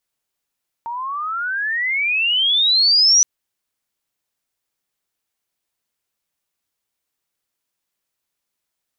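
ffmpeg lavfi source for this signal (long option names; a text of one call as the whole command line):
ffmpeg -f lavfi -i "aevalsrc='pow(10,(-9+15*(t/2.37-1))/20)*sin(2*PI*913*2.37/(32.5*log(2)/12)*(exp(32.5*log(2)/12*t/2.37)-1))':duration=2.37:sample_rate=44100" out.wav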